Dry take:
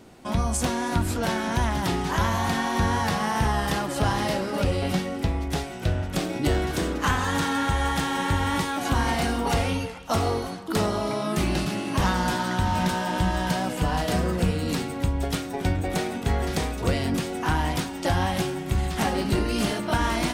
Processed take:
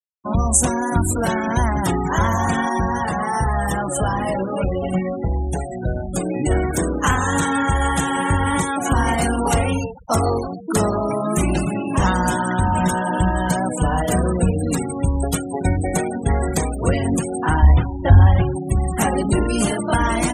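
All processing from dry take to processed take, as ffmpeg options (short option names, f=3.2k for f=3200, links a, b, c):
-filter_complex "[0:a]asettb=1/sr,asplit=3[a][b][c];[a]atrim=end=2.694[d];[b]atrim=start=2.69:end=6.51,asetpts=PTS-STARTPTS,afade=t=in:d=0.004:c=qsin,afade=t=out:st=3.816:d=0.004:c=qsin,acompressor=threshold=-29dB:ratio=1.5:attack=3.2:release=140:knee=1:detection=peak,asplit=2[e][f];[f]adelay=16,volume=-5dB[g];[e][g]amix=inputs=2:normalize=0,atrim=end_sample=168462[h];[c]atrim=start=6.506[i];[d][h]acrossfade=d=0.004:c1=hsin:c2=qsin[j];[j][i]acrossfade=d=0.004:c1=qsin:c2=hsin,asettb=1/sr,asplit=3[k][l][m];[k]atrim=end=17.624[n];[l]atrim=start=17.62:end=18.56,asetpts=PTS-STARTPTS,afade=t=in:d=0.004:c=qsin,afade=t=out:st=0.936:d=0.004:c=qsin,acrossover=split=4800[o][p];[p]acompressor=threshold=-52dB:ratio=4:attack=1:release=60[q];[o][q]amix=inputs=2:normalize=0,lowshelf=f=130:t=q:w=1.5:g=13[r];[m]atrim=start=18.556[s];[n][r]acrossfade=d=0.004:c1=hsin:c2=qsin[t];[t][s]acrossfade=d=0.004:c1=qsin:c2=hsin,acontrast=81,highshelf=f=6k:t=q:w=1.5:g=7,afftfilt=real='re*gte(hypot(re,im),0.0891)':imag='im*gte(hypot(re,im),0.0891)':win_size=1024:overlap=0.75,volume=-1dB"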